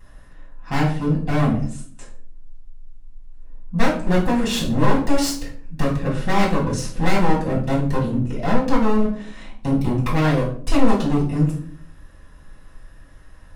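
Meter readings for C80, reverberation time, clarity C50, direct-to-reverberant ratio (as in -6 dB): 12.0 dB, 0.55 s, 6.5 dB, -5.5 dB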